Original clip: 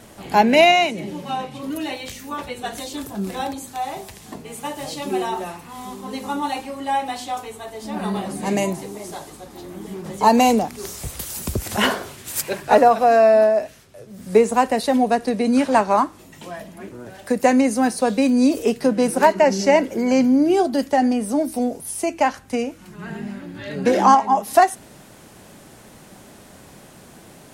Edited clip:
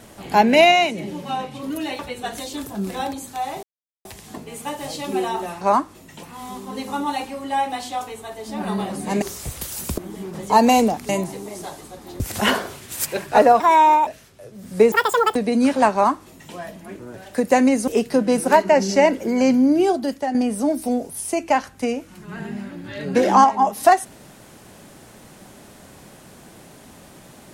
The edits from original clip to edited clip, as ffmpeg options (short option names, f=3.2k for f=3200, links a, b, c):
-filter_complex "[0:a]asplit=15[a][b][c][d][e][f][g][h][i][j][k][l][m][n][o];[a]atrim=end=1.992[p];[b]atrim=start=2.388:end=4.03,asetpts=PTS-STARTPTS,afade=t=out:st=1.638:d=0.004:c=hsin,apad=pad_dur=0.42[q];[c]atrim=start=4.03:end=5.592,asetpts=PTS-STARTPTS,afade=t=in:d=0.004:c=hsin[r];[d]atrim=start=15.848:end=16.472[s];[e]atrim=start=5.588:end=8.582[t];[f]atrim=start=10.798:end=11.562[u];[g]atrim=start=9.688:end=10.802[v];[h]atrim=start=8.578:end=9.692[w];[i]atrim=start=11.558:end=12.964[x];[j]atrim=start=12.96:end=13.62,asetpts=PTS-STARTPTS,asetrate=62181,aresample=44100[y];[k]atrim=start=13.616:end=14.474[z];[l]atrim=start=14.47:end=15.28,asetpts=PTS-STARTPTS,asetrate=81585,aresample=44100[aa];[m]atrim=start=15.276:end=17.802[ab];[n]atrim=start=18.578:end=21.05,asetpts=PTS-STARTPTS,afade=t=out:st=1.922:d=0.55:silence=0.375837[ac];[o]atrim=start=21.05,asetpts=PTS-STARTPTS,afade=t=in:d=0.004:c=hsin:silence=0.375837[ad];[q][r]concat=n=2:v=0:a=1[ae];[p][ae]acrossfade=d=0.004:c1=hsin:c2=hsin[af];[af][s]acrossfade=d=0.004:c1=hsin:c2=hsin[ag];[ag][t]acrossfade=d=0.004:c1=hsin:c2=hsin[ah];[ah][u]acrossfade=d=0.004:c1=hsin:c2=hsin[ai];[ai][v]acrossfade=d=0.004:c1=hsin:c2=hsin[aj];[aj][w]acrossfade=d=0.004:c1=hsin:c2=hsin[ak];[ak][x]acrossfade=d=0.004:c1=hsin:c2=hsin[al];[al][y]acrossfade=d=0.004:c1=hsin:c2=hsin[am];[am][z]acrossfade=d=0.004:c1=hsin:c2=hsin[an];[an][aa]acrossfade=d=0.004:c1=hsin:c2=hsin[ao];[ao][ab]acrossfade=d=0.004:c1=hsin:c2=hsin[ap];[ac][ad]concat=n=2:v=0:a=1[aq];[ap][aq]acrossfade=d=0.004:c1=hsin:c2=hsin"